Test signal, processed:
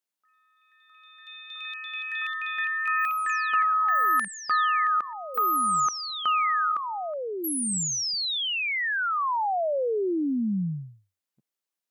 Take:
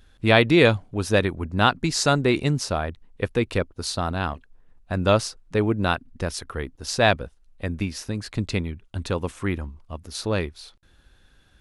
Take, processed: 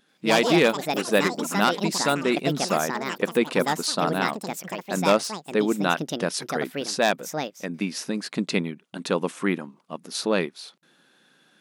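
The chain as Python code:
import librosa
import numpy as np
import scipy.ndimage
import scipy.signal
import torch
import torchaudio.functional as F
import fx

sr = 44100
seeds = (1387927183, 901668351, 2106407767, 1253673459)

y = np.minimum(x, 2.0 * 10.0 ** (-10.0 / 20.0) - x)
y = fx.rider(y, sr, range_db=3, speed_s=0.5)
y = fx.echo_pitch(y, sr, ms=84, semitones=6, count=3, db_per_echo=-6.0)
y = fx.brickwall_highpass(y, sr, low_hz=150.0)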